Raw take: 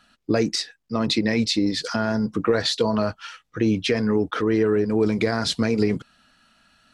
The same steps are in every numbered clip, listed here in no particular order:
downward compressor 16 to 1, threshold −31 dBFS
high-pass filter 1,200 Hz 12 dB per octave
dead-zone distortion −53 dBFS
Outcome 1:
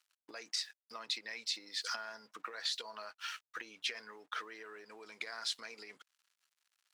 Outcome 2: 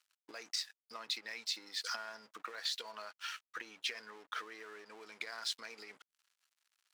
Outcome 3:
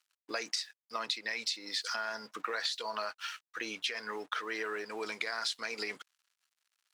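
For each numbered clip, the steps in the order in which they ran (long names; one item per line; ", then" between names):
dead-zone distortion, then downward compressor, then high-pass filter
downward compressor, then dead-zone distortion, then high-pass filter
dead-zone distortion, then high-pass filter, then downward compressor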